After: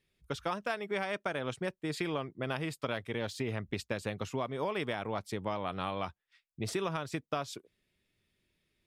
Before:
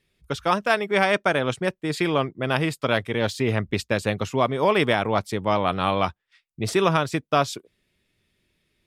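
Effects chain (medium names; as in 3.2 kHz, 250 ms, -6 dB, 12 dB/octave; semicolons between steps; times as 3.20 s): compression, threshold -23 dBFS, peak gain reduction 9 dB; trim -7.5 dB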